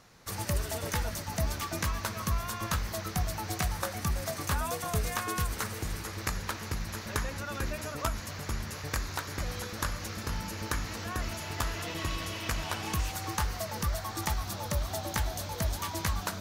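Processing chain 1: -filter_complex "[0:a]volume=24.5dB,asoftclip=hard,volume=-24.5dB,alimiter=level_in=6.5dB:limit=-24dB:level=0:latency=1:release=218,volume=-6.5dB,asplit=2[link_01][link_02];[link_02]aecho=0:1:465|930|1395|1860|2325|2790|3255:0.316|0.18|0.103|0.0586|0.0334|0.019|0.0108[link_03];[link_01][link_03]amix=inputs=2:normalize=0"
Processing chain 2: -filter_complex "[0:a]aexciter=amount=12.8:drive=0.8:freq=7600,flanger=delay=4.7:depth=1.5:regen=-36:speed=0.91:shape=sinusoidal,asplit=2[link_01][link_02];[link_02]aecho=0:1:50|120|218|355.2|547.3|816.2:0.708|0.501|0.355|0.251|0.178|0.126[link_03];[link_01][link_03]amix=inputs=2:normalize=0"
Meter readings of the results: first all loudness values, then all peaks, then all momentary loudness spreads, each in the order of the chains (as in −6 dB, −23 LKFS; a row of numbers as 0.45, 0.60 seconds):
−38.5, −24.5 LKFS; −26.0, −5.0 dBFS; 2, 7 LU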